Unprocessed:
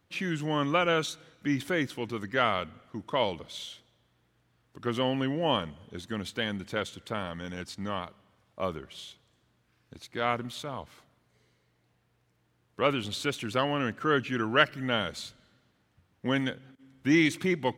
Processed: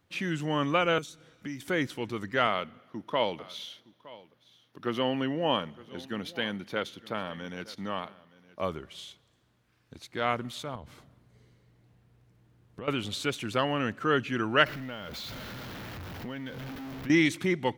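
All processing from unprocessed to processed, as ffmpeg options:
-filter_complex "[0:a]asettb=1/sr,asplit=3[a][b][c];[a]atrim=end=0.984[d];[b]atrim=start=0.98:end=1.68,asetpts=PTS-STARTPTS,afade=t=in:d=0.004:c=qsin,afade=t=out:st=0.696:d=0.004:c=qsin,acrossover=split=410|5700[e][f][g];[e]acompressor=threshold=-39dB:ratio=4[h];[f]acompressor=threshold=-46dB:ratio=4[i];[g]acompressor=threshold=-49dB:ratio=4[j];[h][i][j]amix=inputs=3:normalize=0,bandreject=f=4k:w=16[k];[c]atrim=start=1.676[l];[d][k]acrossfade=d=0.004:c1=hsin:c2=qsin[m];[m][l]acrossfade=d=0.004:c1=qsin:c2=hsin,asettb=1/sr,asplit=3[n][o][p];[n]atrim=end=2.474[q];[o]atrim=start=2.47:end=8.61,asetpts=PTS-STARTPTS,afade=t=in:d=0.004:c=qsin,afade=t=out:st=6.136:d=0.004:c=qsin,highpass=150,equalizer=f=7.8k:t=o:w=0.35:g=-14.5,aecho=1:1:915:0.1,atrim=end_sample=270774[r];[p]atrim=start=8.606[s];[q][r]acrossfade=d=0.004:c1=hsin:c2=qsin[t];[t][s]acrossfade=d=0.004:c1=qsin:c2=hsin,asettb=1/sr,asplit=3[u][v][w];[u]atrim=end=10.754[x];[v]atrim=start=10.75:end=12.88,asetpts=PTS-STARTPTS,afade=t=in:d=0.004:c=qsin,afade=t=out:st=2.126:d=0.004:c=qsin,lowshelf=f=370:g=11.5,acompressor=threshold=-39dB:ratio=5:attack=3.2:release=140:knee=1:detection=peak[y];[w]atrim=start=12.876[z];[x][y]acrossfade=d=0.004:c1=hsin:c2=qsin[aa];[aa][z]acrossfade=d=0.004:c1=qsin:c2=hsin,asettb=1/sr,asplit=3[ab][ac][ad];[ab]atrim=end=14.664[ae];[ac]atrim=start=14.66:end=17.1,asetpts=PTS-STARTPTS,afade=t=in:d=0.004:c=qsin,afade=t=out:st=2.436:d=0.004:c=qsin,aeval=exprs='val(0)+0.5*0.0188*sgn(val(0))':c=same,equalizer=f=8.5k:w=1.2:g=-14,acompressor=threshold=-36dB:ratio=5:attack=3.2:release=140:knee=1:detection=peak[af];[ad]atrim=start=17.096[ag];[ae][af]acrossfade=d=0.004:c1=hsin:c2=qsin[ah];[ah][ag]acrossfade=d=0.004:c1=qsin:c2=hsin"

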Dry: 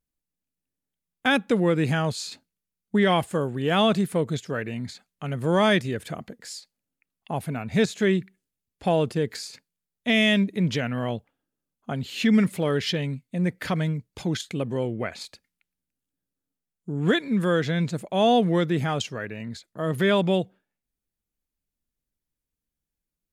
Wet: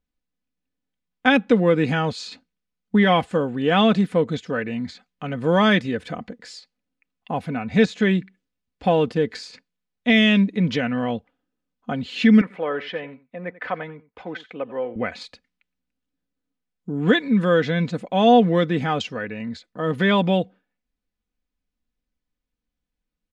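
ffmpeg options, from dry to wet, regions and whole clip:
-filter_complex "[0:a]asettb=1/sr,asplit=3[a][b][c];[a]atrim=end=12.414[d];[b]atrim=start=12.41:end=14.96,asetpts=PTS-STARTPTS,afade=t=in:d=0.004:c=qsin,afade=t=out:st=2.546:d=0.004:c=qsin,acrossover=split=420 2400:gain=0.126 1 0.0708[e][f][g];[e][f][g]amix=inputs=3:normalize=0,aecho=1:1:90:0.133,atrim=end_sample=112455[h];[c]atrim=start=14.956[i];[d][h]acrossfade=d=0.004:c1=hsin:c2=qsin[j];[j][i]acrossfade=d=0.004:c1=qsin:c2=hsin,lowpass=4.2k,aecho=1:1:4:0.49,volume=3dB"

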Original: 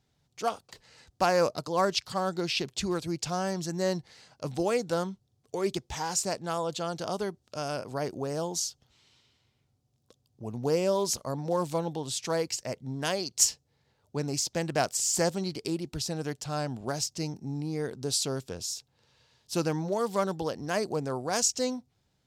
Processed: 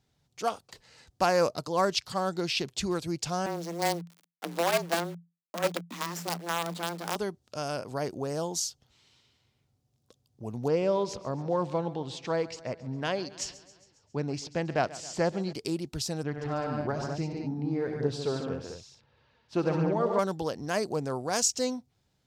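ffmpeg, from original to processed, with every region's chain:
-filter_complex "[0:a]asettb=1/sr,asplit=3[a][b][c];[a]atrim=end=3.464[d];[b]atrim=start=3.46:end=7.16,asetpts=PTS-STARTPTS,afade=t=in:d=0.004:c=qsin,afade=t=out:st=3.696:d=0.004:c=qsin,lowpass=4.7k,acrusher=bits=5:dc=4:mix=0:aa=0.000001,afreqshift=170[e];[c]atrim=start=7.156[f];[d][e]acrossfade=d=0.004:c1=hsin:c2=qsin[g];[g][f]acrossfade=d=0.004:c1=qsin:c2=hsin,asettb=1/sr,asplit=3[h][i][j];[h]atrim=end=10.684[k];[i]atrim=start=10.68:end=15.53,asetpts=PTS-STARTPTS,afade=t=in:d=0.004:c=qsin,afade=t=out:st=4.846:d=0.004:c=qsin,lowpass=3.2k,aecho=1:1:136|272|408|544|680:0.126|0.0755|0.0453|0.0272|0.0163,atrim=end_sample=213885[l];[j]atrim=start=15.526[m];[k][l]acrossfade=d=0.004:c1=hsin:c2=qsin[n];[n][m]acrossfade=d=0.004:c1=qsin:c2=hsin,asettb=1/sr,asplit=3[o][p][q];[o]atrim=end=16.234[r];[p]atrim=start=16.23:end=20.19,asetpts=PTS-STARTPTS,afade=t=in:d=0.004:c=qsin,afade=t=out:st=3.956:d=0.004:c=qsin,lowpass=2.3k,aecho=1:1:69|96|145|206:0.224|0.335|0.562|0.473,atrim=end_sample=174636,aphaser=in_gain=1:out_gain=1:delay=4.6:decay=0.31:speed=1.1:type=triangular[s];[q]atrim=start=20.186[t];[r][s]acrossfade=d=0.004:c1=hsin:c2=qsin[u];[u][t]acrossfade=d=0.004:c1=qsin:c2=hsin"

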